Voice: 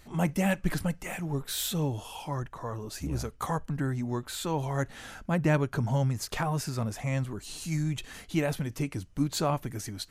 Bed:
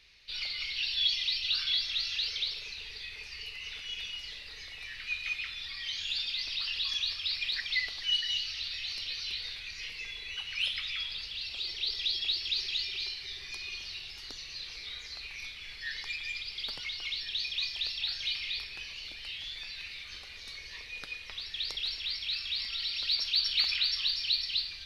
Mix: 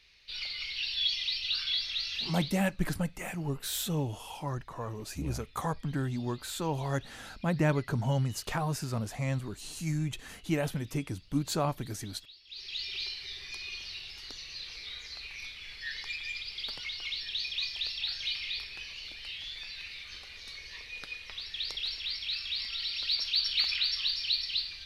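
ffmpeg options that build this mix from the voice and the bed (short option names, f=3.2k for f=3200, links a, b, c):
-filter_complex "[0:a]adelay=2150,volume=-2dB[a];[1:a]volume=20.5dB,afade=t=out:st=2.13:d=0.58:silence=0.0891251,afade=t=in:st=12.47:d=0.49:silence=0.0794328[b];[a][b]amix=inputs=2:normalize=0"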